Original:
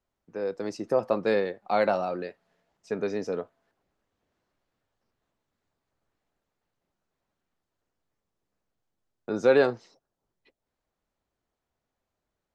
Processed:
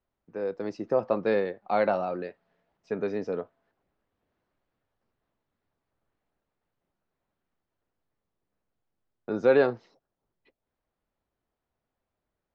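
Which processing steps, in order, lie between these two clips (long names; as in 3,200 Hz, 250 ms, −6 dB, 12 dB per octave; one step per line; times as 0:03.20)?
high-frequency loss of the air 190 metres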